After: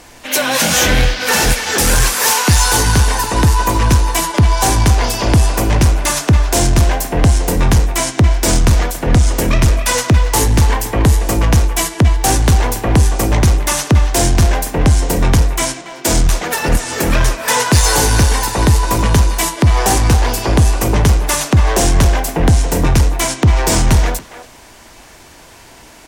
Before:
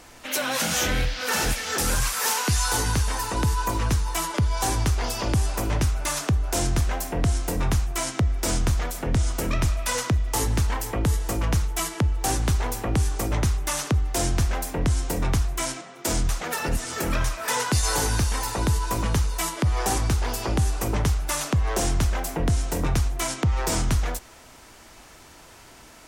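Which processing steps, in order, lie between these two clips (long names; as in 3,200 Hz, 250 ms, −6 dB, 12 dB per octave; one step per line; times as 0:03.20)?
notch filter 1,300 Hz, Q 12
in parallel at −9.5 dB: sine wavefolder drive 6 dB, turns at −13 dBFS
on the sum: far-end echo of a speakerphone 280 ms, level −7 dB
expander for the loud parts 1.5 to 1, over −29 dBFS
level +8.5 dB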